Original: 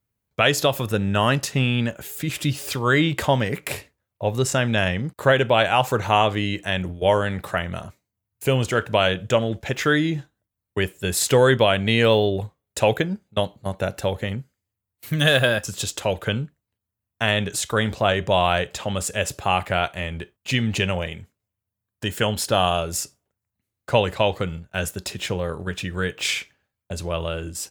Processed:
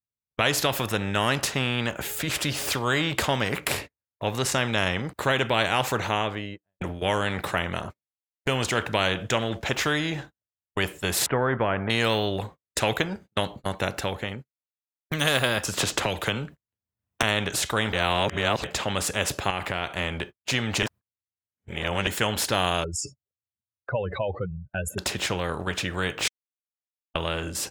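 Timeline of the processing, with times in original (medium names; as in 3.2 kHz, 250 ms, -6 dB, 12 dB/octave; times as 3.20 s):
5.78–6.81 s: studio fade out
7.60–8.46 s: studio fade out
11.26–11.90 s: low-pass 1.5 kHz 24 dB/octave
13.84–15.11 s: fade out quadratic
15.77–17.23 s: three bands compressed up and down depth 100%
17.93–18.64 s: reverse
19.50–19.92 s: compression 2.5:1, threshold -29 dBFS
20.83–22.07 s: reverse
22.84–24.98 s: spectral contrast enhancement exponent 2.9
26.28–27.15 s: mute
whole clip: gate -39 dBFS, range -34 dB; treble shelf 4.1 kHz -11 dB; spectrum-flattening compressor 2:1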